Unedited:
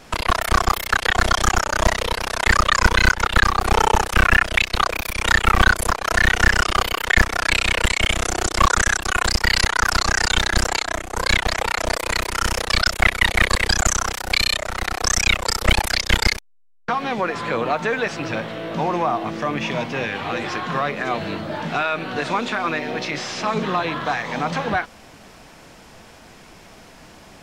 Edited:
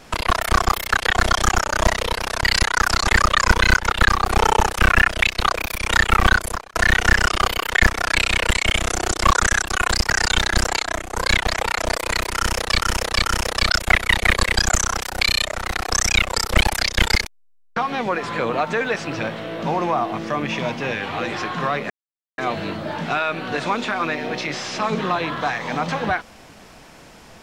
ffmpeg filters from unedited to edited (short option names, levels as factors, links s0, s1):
-filter_complex "[0:a]asplit=8[s0][s1][s2][s3][s4][s5][s6][s7];[s0]atrim=end=2.432[s8];[s1]atrim=start=9.448:end=10.102[s9];[s2]atrim=start=2.428:end=6.09,asetpts=PTS-STARTPTS,afade=t=out:st=3.052:d=0.61:c=qsin[s10];[s3]atrim=start=6.09:end=9.452,asetpts=PTS-STARTPTS,afade=t=in:d=0.004:c=hsin[s11];[s4]atrim=start=10.098:end=12.802[s12];[s5]atrim=start=12.358:end=12.802[s13];[s6]atrim=start=12.358:end=21.02,asetpts=PTS-STARTPTS,afade=t=out:st=8.658:d=0.004:c=hsin,apad=pad_dur=0.48[s14];[s7]atrim=start=21.02,asetpts=PTS-STARTPTS,afade=t=in:d=0.004:c=hsin[s15];[s8][s9]acrossfade=d=0.004:c1=hsin:c2=hsin[s16];[s10][s11]concat=n=2:v=0:a=1[s17];[s16][s17]acrossfade=d=0.004:c1=hsin:c2=hsin[s18];[s18][s12]acrossfade=d=0.004:c1=hsin:c2=hsin[s19];[s19][s13]acrossfade=d=0.004:c1=hsin:c2=hsin[s20];[s14][s15]concat=n=2:v=0:a=1[s21];[s20][s21]acrossfade=d=0.004:c1=hsin:c2=hsin"